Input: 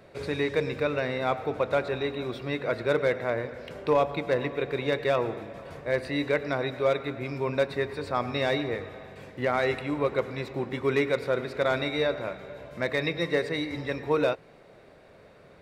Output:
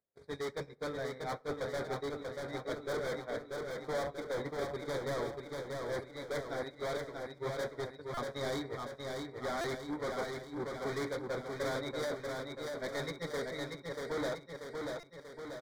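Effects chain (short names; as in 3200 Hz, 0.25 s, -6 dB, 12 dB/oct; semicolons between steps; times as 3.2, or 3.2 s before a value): flange 0.3 Hz, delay 4.1 ms, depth 3.5 ms, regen -60%; in parallel at -0.5 dB: limiter -31.5 dBFS, peak gain reduction 14 dB; on the sum: upward compressor, threshold -27 dBFS; gate -27 dBFS, range -59 dB; hard clip -35.5 dBFS, distortion -3 dB; Butterworth band-stop 2700 Hz, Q 2.5; feedback echo 0.637 s, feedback 57%, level -4 dB; on a send at -22.5 dB: reverb RT60 0.50 s, pre-delay 12 ms; on the sum: stuck buffer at 8.14/9.61/15, samples 128, times 10; gain +1 dB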